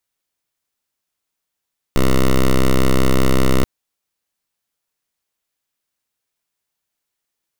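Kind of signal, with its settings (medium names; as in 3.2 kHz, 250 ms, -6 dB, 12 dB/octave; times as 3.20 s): pulse 65.2 Hz, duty 8% -12 dBFS 1.68 s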